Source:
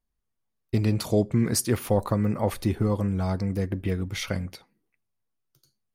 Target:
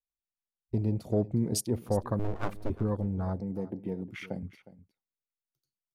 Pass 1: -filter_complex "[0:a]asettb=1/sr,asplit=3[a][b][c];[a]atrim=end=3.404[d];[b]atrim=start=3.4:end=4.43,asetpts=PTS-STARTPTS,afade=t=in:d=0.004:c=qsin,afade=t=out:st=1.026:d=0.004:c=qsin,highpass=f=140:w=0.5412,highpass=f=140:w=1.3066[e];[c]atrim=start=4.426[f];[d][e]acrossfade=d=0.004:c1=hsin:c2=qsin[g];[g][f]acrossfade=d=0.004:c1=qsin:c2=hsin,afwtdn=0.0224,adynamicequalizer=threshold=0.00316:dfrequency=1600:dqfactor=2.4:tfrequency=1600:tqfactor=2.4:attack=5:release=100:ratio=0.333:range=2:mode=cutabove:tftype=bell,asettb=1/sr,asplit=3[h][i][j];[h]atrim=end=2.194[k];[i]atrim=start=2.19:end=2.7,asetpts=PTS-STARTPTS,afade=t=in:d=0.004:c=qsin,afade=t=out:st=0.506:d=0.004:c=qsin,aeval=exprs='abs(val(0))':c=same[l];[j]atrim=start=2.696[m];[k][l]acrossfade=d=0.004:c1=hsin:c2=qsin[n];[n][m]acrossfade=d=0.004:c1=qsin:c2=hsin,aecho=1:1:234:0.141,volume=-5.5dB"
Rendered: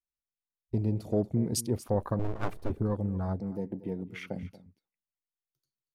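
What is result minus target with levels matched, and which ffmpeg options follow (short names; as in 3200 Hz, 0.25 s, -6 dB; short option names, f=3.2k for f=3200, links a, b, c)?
echo 0.127 s early
-filter_complex "[0:a]asettb=1/sr,asplit=3[a][b][c];[a]atrim=end=3.404[d];[b]atrim=start=3.4:end=4.43,asetpts=PTS-STARTPTS,afade=t=in:d=0.004:c=qsin,afade=t=out:st=1.026:d=0.004:c=qsin,highpass=f=140:w=0.5412,highpass=f=140:w=1.3066[e];[c]atrim=start=4.426[f];[d][e]acrossfade=d=0.004:c1=hsin:c2=qsin[g];[g][f]acrossfade=d=0.004:c1=qsin:c2=hsin,afwtdn=0.0224,adynamicequalizer=threshold=0.00316:dfrequency=1600:dqfactor=2.4:tfrequency=1600:tqfactor=2.4:attack=5:release=100:ratio=0.333:range=2:mode=cutabove:tftype=bell,asettb=1/sr,asplit=3[h][i][j];[h]atrim=end=2.194[k];[i]atrim=start=2.19:end=2.7,asetpts=PTS-STARTPTS,afade=t=in:d=0.004:c=qsin,afade=t=out:st=0.506:d=0.004:c=qsin,aeval=exprs='abs(val(0))':c=same[l];[j]atrim=start=2.696[m];[k][l]acrossfade=d=0.004:c1=hsin:c2=qsin[n];[n][m]acrossfade=d=0.004:c1=qsin:c2=hsin,aecho=1:1:361:0.141,volume=-5.5dB"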